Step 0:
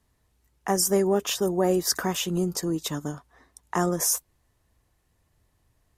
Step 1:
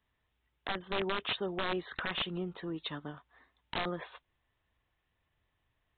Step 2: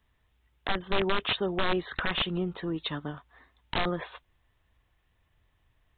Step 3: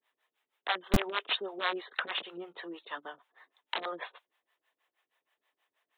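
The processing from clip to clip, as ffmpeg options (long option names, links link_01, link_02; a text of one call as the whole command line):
ffmpeg -i in.wav -af "tiltshelf=frequency=970:gain=-6,aresample=8000,aeval=exprs='(mod(8.91*val(0)+1,2)-1)/8.91':channel_layout=same,aresample=44100,volume=-6.5dB" out.wav
ffmpeg -i in.wav -af "lowshelf=frequency=87:gain=9,volume=5.5dB" out.wav
ffmpeg -i in.wav -filter_complex "[0:a]acrossover=split=440[link_01][link_02];[link_01]aeval=exprs='val(0)*(1-1/2+1/2*cos(2*PI*6.3*n/s))':channel_layout=same[link_03];[link_02]aeval=exprs='val(0)*(1-1/2-1/2*cos(2*PI*6.3*n/s))':channel_layout=same[link_04];[link_03][link_04]amix=inputs=2:normalize=0,acrossover=split=370|1300[link_05][link_06][link_07];[link_05]acrusher=bits=3:mix=0:aa=0.000001[link_08];[link_08][link_06][link_07]amix=inputs=3:normalize=0,volume=2dB" out.wav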